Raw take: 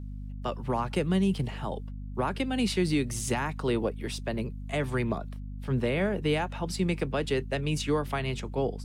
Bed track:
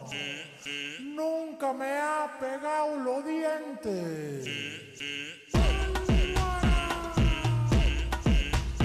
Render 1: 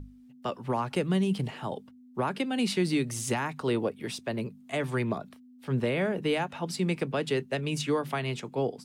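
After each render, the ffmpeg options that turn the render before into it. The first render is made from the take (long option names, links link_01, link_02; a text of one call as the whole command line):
ffmpeg -i in.wav -af "bandreject=frequency=50:width_type=h:width=6,bandreject=frequency=100:width_type=h:width=6,bandreject=frequency=150:width_type=h:width=6,bandreject=frequency=200:width_type=h:width=6" out.wav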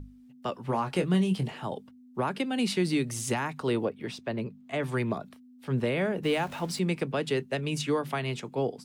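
ffmpeg -i in.wav -filter_complex "[0:a]asettb=1/sr,asplit=3[link_01][link_02][link_03];[link_01]atrim=end=0.664[link_04];[link_02]atrim=start=0.66:end=1.52,asetpts=PTS-STARTPTS,afade=type=in:duration=0.004:curve=qsin,afade=type=out:start_time=0.856:duration=0.004:curve=qsin,asplit=2[link_05][link_06];[link_06]adelay=22,volume=-7.5dB[link_07];[link_05][link_07]amix=inputs=2:normalize=0,atrim=end_sample=37926[link_08];[link_03]atrim=start=1.516[link_09];[link_04][link_08]acrossfade=duration=0.004:curve1=hsin:curve2=qsin[link_10];[link_10][link_09]acrossfade=duration=0.004:curve1=qsin:curve2=hsin,asettb=1/sr,asplit=3[link_11][link_12][link_13];[link_11]atrim=end=3.854[link_14];[link_12]atrim=start=3.85:end=4.83,asetpts=PTS-STARTPTS,afade=type=in:duration=0.004:curve=qsin,afade=type=out:start_time=0.976:duration=0.004:curve=qsin,equalizer=frequency=11000:width_type=o:width=1.5:gain=-12[link_15];[link_13]atrim=start=4.826[link_16];[link_14][link_15]acrossfade=duration=0.004:curve1=hsin:curve2=qsin[link_17];[link_17][link_16]acrossfade=duration=0.004:curve1=qsin:curve2=hsin,asettb=1/sr,asplit=3[link_18][link_19][link_20];[link_18]atrim=end=6.234[link_21];[link_19]atrim=start=6.23:end=6.79,asetpts=PTS-STARTPTS,afade=type=in:duration=0.004:curve=qsin,afade=type=out:start_time=0.556:duration=0.004:curve=qsin,aeval=exprs='val(0)+0.5*0.00841*sgn(val(0))':channel_layout=same[link_22];[link_20]atrim=start=6.786[link_23];[link_21][link_22]acrossfade=duration=0.004:curve1=hsin:curve2=qsin[link_24];[link_24][link_23]acrossfade=duration=0.004:curve1=qsin:curve2=hsin" out.wav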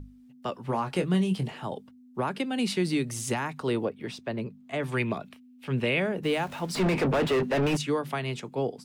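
ffmpeg -i in.wav -filter_complex "[0:a]asettb=1/sr,asplit=3[link_01][link_02][link_03];[link_01]atrim=end=4.924[link_04];[link_02]atrim=start=4.92:end=6,asetpts=PTS-STARTPTS,afade=type=in:duration=0.004:curve=qsin,afade=type=out:start_time=1.076:duration=0.004:curve=qsin,equalizer=frequency=2600:width=2:gain=10.5[link_05];[link_03]atrim=start=5.996[link_06];[link_04][link_05]acrossfade=duration=0.004:curve1=hsin:curve2=qsin[link_07];[link_07][link_06]acrossfade=duration=0.004:curve1=qsin:curve2=hsin,asettb=1/sr,asplit=3[link_08][link_09][link_10];[link_08]atrim=end=6.754[link_11];[link_09]atrim=start=6.75:end=7.77,asetpts=PTS-STARTPTS,afade=type=in:duration=0.004:curve=qsin,afade=type=out:start_time=1.016:duration=0.004:curve=qsin,asplit=2[link_12][link_13];[link_13]highpass=frequency=720:poles=1,volume=36dB,asoftclip=type=tanh:threshold=-16.5dB[link_14];[link_12][link_14]amix=inputs=2:normalize=0,lowpass=frequency=1100:poles=1,volume=-6dB[link_15];[link_10]atrim=start=7.766[link_16];[link_11][link_15]acrossfade=duration=0.004:curve1=hsin:curve2=qsin[link_17];[link_17][link_16]acrossfade=duration=0.004:curve1=qsin:curve2=hsin" out.wav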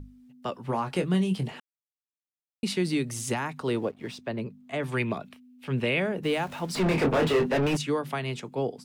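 ffmpeg -i in.wav -filter_complex "[0:a]asettb=1/sr,asplit=3[link_01][link_02][link_03];[link_01]atrim=end=3.664[link_04];[link_02]atrim=start=3.66:end=4.16,asetpts=PTS-STARTPTS,afade=type=in:duration=0.004:curve=qsin,afade=type=out:start_time=0.496:duration=0.004:curve=qsin,aeval=exprs='sgn(val(0))*max(abs(val(0))-0.0015,0)':channel_layout=same[link_05];[link_03]atrim=start=4.156[link_06];[link_04][link_05]acrossfade=duration=0.004:curve1=hsin:curve2=qsin[link_07];[link_07][link_06]acrossfade=duration=0.004:curve1=qsin:curve2=hsin,asettb=1/sr,asplit=3[link_08][link_09][link_10];[link_08]atrim=end=6.874[link_11];[link_09]atrim=start=6.87:end=7.57,asetpts=PTS-STARTPTS,afade=type=in:duration=0.004:curve=qsin,afade=type=out:start_time=0.696:duration=0.004:curve=qsin,asplit=2[link_12][link_13];[link_13]adelay=25,volume=-4dB[link_14];[link_12][link_14]amix=inputs=2:normalize=0,atrim=end_sample=30870[link_15];[link_10]atrim=start=7.566[link_16];[link_11][link_15]acrossfade=duration=0.004:curve1=hsin:curve2=qsin[link_17];[link_17][link_16]acrossfade=duration=0.004:curve1=qsin:curve2=hsin,asplit=3[link_18][link_19][link_20];[link_18]atrim=end=1.6,asetpts=PTS-STARTPTS,afade=type=out:start_time=1.596:duration=0.004:curve=hsin[link_21];[link_19]atrim=start=1.6:end=2.63,asetpts=PTS-STARTPTS,volume=0[link_22];[link_20]atrim=start=2.63,asetpts=PTS-STARTPTS,afade=type=in:duration=0.004:curve=hsin[link_23];[link_21][link_22][link_23]concat=n=3:v=0:a=1" out.wav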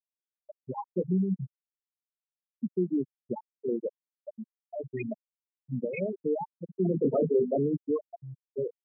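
ffmpeg -i in.wav -af "afftfilt=real='re*gte(hypot(re,im),0.251)':imag='im*gte(hypot(re,im),0.251)':win_size=1024:overlap=0.75,highpass=160" out.wav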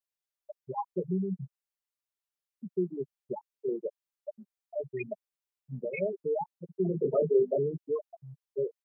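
ffmpeg -i in.wav -af "equalizer=frequency=230:width_type=o:width=0.68:gain=-15,aecho=1:1:5:0.59" out.wav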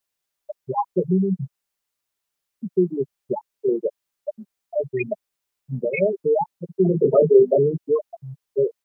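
ffmpeg -i in.wav -af "volume=11dB" out.wav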